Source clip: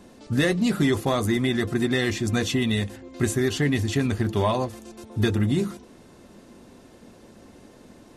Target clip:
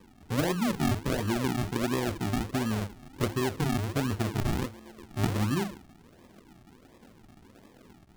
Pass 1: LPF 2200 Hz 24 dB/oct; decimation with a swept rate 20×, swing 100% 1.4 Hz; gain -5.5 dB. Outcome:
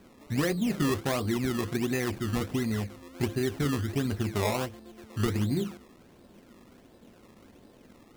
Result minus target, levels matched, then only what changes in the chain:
decimation with a swept rate: distortion -10 dB
change: decimation with a swept rate 60×, swing 100% 1.4 Hz

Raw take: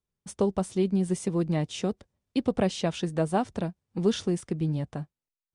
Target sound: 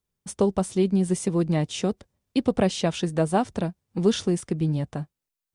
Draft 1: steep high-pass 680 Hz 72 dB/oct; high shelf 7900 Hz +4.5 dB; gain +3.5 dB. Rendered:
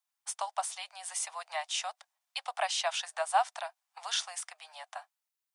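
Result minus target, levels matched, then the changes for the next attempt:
500 Hz band -6.0 dB
remove: steep high-pass 680 Hz 72 dB/oct

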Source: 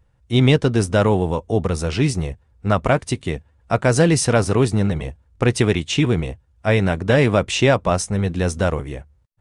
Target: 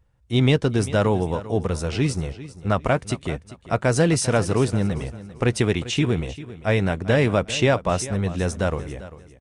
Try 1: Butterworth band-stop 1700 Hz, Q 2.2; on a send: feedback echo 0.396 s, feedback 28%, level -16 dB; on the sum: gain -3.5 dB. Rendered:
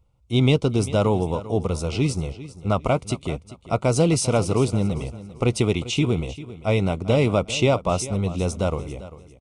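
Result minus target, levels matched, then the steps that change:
2000 Hz band -4.5 dB
remove: Butterworth band-stop 1700 Hz, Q 2.2

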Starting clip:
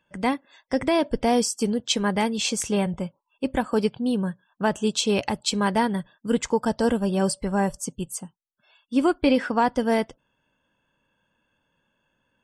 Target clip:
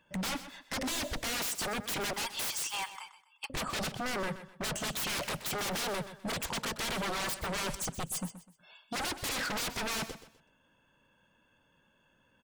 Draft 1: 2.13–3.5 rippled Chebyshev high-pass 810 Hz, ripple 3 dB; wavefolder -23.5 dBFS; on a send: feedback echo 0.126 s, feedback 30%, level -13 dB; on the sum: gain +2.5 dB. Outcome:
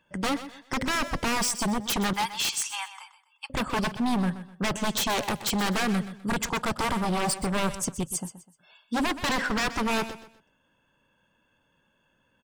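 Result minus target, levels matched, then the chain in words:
wavefolder: distortion -21 dB
2.13–3.5 rippled Chebyshev high-pass 810 Hz, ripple 3 dB; wavefolder -32 dBFS; on a send: feedback echo 0.126 s, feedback 30%, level -13 dB; on the sum: gain +2.5 dB

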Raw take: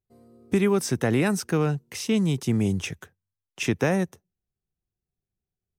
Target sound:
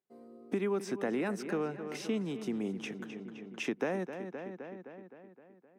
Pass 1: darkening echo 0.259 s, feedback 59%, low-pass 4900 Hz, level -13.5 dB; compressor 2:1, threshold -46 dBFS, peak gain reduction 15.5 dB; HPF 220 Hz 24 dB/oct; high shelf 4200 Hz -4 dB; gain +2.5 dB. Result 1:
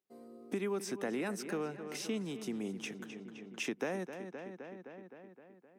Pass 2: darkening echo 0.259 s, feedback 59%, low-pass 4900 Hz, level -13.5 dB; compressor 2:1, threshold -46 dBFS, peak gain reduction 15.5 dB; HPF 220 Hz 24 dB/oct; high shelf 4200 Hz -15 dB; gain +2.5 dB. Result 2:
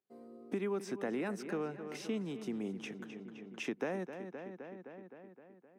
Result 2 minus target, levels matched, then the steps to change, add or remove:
compressor: peak gain reduction +4 dB
change: compressor 2:1, threshold -38.5 dBFS, peak gain reduction 12 dB

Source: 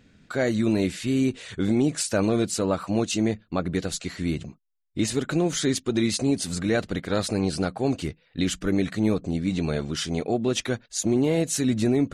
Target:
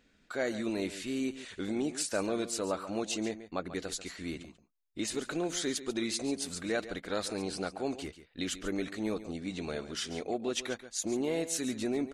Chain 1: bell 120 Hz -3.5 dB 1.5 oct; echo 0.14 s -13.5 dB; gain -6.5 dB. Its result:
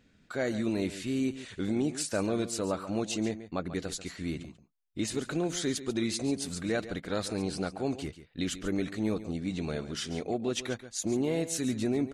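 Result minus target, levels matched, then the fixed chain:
125 Hz band +6.5 dB
bell 120 Hz -15 dB 1.5 oct; echo 0.14 s -13.5 dB; gain -6.5 dB

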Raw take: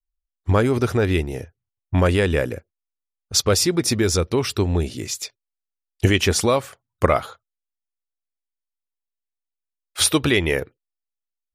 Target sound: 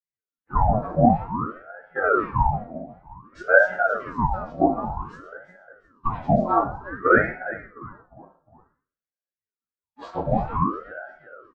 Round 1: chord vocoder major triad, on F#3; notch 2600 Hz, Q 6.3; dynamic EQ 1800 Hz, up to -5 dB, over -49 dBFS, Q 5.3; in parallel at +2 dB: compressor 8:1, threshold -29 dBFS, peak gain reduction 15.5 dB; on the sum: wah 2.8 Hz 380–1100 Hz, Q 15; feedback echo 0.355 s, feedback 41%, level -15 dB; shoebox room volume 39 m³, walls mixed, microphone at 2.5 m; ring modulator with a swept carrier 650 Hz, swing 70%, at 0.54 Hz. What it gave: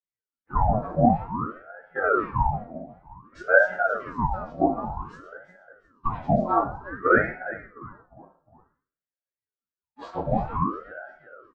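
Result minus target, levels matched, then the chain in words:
compressor: peak gain reduction +7 dB
chord vocoder major triad, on F#3; notch 2600 Hz, Q 6.3; dynamic EQ 1800 Hz, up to -5 dB, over -49 dBFS, Q 5.3; in parallel at +2 dB: compressor 8:1, threshold -21 dBFS, peak gain reduction 8.5 dB; on the sum: wah 2.8 Hz 380–1100 Hz, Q 15; feedback echo 0.355 s, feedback 41%, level -15 dB; shoebox room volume 39 m³, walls mixed, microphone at 2.5 m; ring modulator with a swept carrier 650 Hz, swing 70%, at 0.54 Hz

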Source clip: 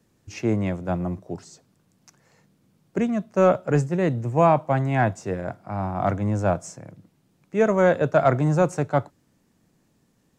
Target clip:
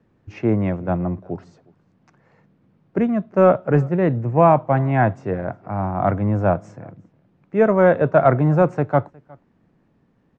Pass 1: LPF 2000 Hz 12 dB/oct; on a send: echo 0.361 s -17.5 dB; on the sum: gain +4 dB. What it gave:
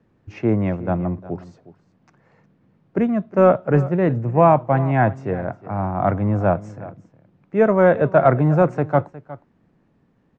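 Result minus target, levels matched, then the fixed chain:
echo-to-direct +9 dB
LPF 2000 Hz 12 dB/oct; on a send: echo 0.361 s -26.5 dB; on the sum: gain +4 dB

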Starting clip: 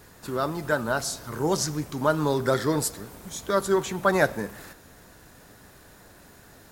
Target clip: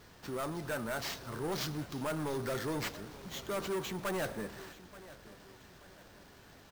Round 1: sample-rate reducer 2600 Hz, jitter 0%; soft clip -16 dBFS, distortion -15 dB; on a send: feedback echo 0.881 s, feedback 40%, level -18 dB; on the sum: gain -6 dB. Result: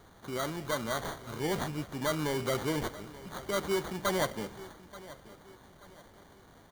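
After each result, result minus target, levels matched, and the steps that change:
sample-rate reducer: distortion +8 dB; soft clip: distortion -8 dB
change: sample-rate reducer 10000 Hz, jitter 0%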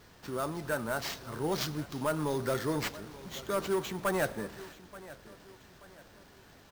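soft clip: distortion -8 dB
change: soft clip -25.5 dBFS, distortion -6 dB

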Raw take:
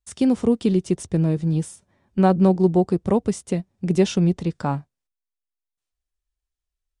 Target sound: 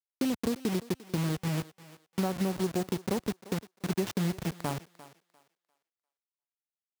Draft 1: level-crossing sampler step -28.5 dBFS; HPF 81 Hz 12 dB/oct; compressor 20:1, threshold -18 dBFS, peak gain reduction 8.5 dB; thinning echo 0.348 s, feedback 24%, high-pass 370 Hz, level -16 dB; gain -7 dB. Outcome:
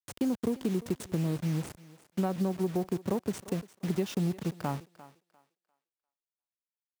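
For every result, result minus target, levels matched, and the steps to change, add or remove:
level-crossing sampler: distortion -9 dB; 8000 Hz band -4.0 dB
change: level-crossing sampler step -20.5 dBFS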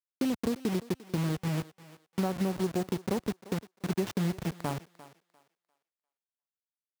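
8000 Hz band -3.0 dB
add after HPF: high shelf 2900 Hz +3.5 dB

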